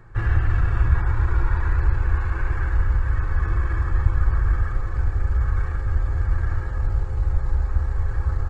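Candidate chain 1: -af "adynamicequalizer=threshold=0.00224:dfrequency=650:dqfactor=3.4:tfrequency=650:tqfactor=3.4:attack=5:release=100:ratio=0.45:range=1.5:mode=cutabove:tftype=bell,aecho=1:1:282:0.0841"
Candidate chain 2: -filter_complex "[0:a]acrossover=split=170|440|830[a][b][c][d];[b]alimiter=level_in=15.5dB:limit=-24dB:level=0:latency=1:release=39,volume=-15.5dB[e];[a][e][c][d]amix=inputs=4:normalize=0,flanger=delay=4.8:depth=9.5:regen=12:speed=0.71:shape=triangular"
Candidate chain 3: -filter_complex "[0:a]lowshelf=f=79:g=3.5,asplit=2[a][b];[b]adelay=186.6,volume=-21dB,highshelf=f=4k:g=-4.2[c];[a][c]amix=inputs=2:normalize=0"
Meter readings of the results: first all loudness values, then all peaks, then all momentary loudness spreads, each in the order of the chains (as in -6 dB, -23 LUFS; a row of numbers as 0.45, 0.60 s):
-24.0, -28.5, -22.0 LUFS; -5.0, -10.0, -3.0 dBFS; 4, 5, 4 LU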